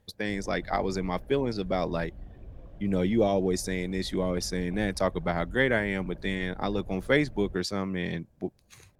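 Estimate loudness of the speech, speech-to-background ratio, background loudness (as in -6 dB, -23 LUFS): -29.0 LUFS, 18.0 dB, -47.0 LUFS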